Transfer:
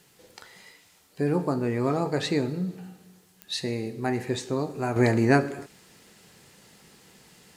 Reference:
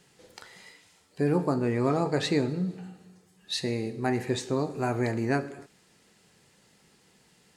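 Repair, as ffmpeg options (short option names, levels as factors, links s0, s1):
-af "adeclick=t=4,agate=range=0.0891:threshold=0.00316,asetnsamples=n=441:p=0,asendcmd='4.96 volume volume -7dB',volume=1"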